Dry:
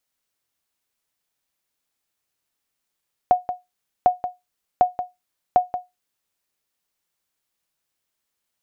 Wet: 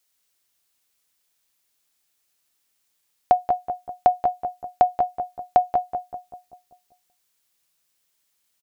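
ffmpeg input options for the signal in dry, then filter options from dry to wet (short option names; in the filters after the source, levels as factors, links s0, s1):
-f lavfi -i "aevalsrc='0.473*(sin(2*PI*725*mod(t,0.75))*exp(-6.91*mod(t,0.75)/0.19)+0.282*sin(2*PI*725*max(mod(t,0.75)-0.18,0))*exp(-6.91*max(mod(t,0.75)-0.18,0)/0.19))':d=3:s=44100"
-filter_complex "[0:a]highshelf=f=2100:g=9,asplit=2[s0][s1];[s1]adelay=194,lowpass=f=1200:p=1,volume=0.562,asplit=2[s2][s3];[s3]adelay=194,lowpass=f=1200:p=1,volume=0.54,asplit=2[s4][s5];[s5]adelay=194,lowpass=f=1200:p=1,volume=0.54,asplit=2[s6][s7];[s7]adelay=194,lowpass=f=1200:p=1,volume=0.54,asplit=2[s8][s9];[s9]adelay=194,lowpass=f=1200:p=1,volume=0.54,asplit=2[s10][s11];[s11]adelay=194,lowpass=f=1200:p=1,volume=0.54,asplit=2[s12][s13];[s13]adelay=194,lowpass=f=1200:p=1,volume=0.54[s14];[s2][s4][s6][s8][s10][s12][s14]amix=inputs=7:normalize=0[s15];[s0][s15]amix=inputs=2:normalize=0"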